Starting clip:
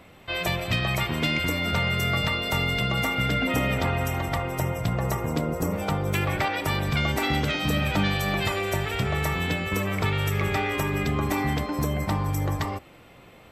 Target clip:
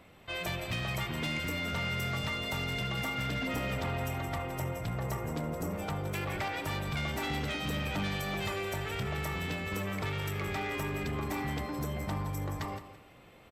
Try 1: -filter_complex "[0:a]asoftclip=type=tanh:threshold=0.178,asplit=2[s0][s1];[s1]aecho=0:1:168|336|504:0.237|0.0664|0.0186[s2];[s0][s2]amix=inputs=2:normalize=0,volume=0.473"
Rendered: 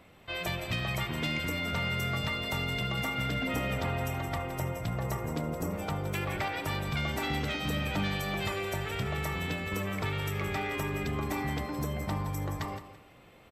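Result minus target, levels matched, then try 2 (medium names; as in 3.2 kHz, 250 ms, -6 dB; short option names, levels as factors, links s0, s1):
saturation: distortion -10 dB
-filter_complex "[0:a]asoftclip=type=tanh:threshold=0.0794,asplit=2[s0][s1];[s1]aecho=0:1:168|336|504:0.237|0.0664|0.0186[s2];[s0][s2]amix=inputs=2:normalize=0,volume=0.473"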